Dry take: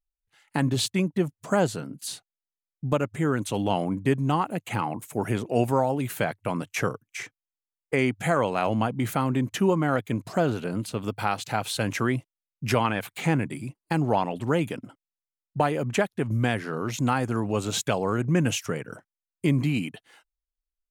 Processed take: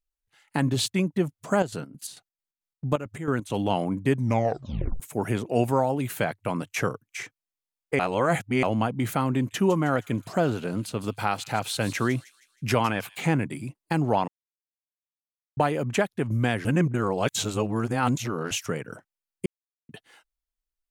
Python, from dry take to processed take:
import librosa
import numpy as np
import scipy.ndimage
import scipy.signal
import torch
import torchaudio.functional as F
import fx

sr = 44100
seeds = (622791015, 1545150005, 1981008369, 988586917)

y = fx.chopper(x, sr, hz=4.5, depth_pct=65, duty_pct=55, at=(1.5, 3.56))
y = fx.echo_wet_highpass(y, sr, ms=158, feedback_pct=43, hz=4100.0, wet_db=-10, at=(9.23, 13.16))
y = fx.edit(y, sr, fx.tape_stop(start_s=4.15, length_s=0.85),
    fx.reverse_span(start_s=7.99, length_s=0.64),
    fx.silence(start_s=14.28, length_s=1.29),
    fx.reverse_span(start_s=16.65, length_s=1.86),
    fx.silence(start_s=19.46, length_s=0.43), tone=tone)